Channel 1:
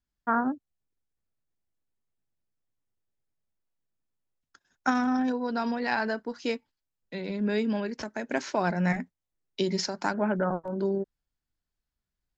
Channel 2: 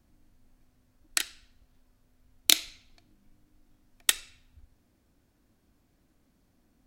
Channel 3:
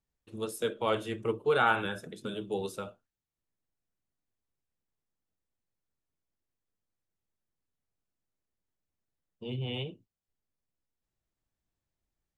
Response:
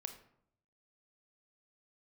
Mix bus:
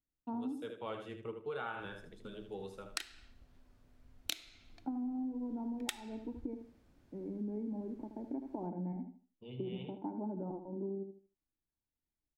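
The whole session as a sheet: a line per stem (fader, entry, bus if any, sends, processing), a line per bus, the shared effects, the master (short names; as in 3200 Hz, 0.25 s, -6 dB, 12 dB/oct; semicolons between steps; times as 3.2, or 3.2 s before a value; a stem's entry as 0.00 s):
+1.5 dB, 0.00 s, no send, echo send -9.5 dB, vocal tract filter u
-1.0 dB, 1.80 s, send -4 dB, no echo send, dry
-11.0 dB, 0.00 s, no send, echo send -8.5 dB, dry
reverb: on, RT60 0.70 s, pre-delay 24 ms
echo: feedback echo 77 ms, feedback 25%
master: high shelf 6400 Hz -12 dB; compressor 8:1, threshold -36 dBFS, peak gain reduction 20.5 dB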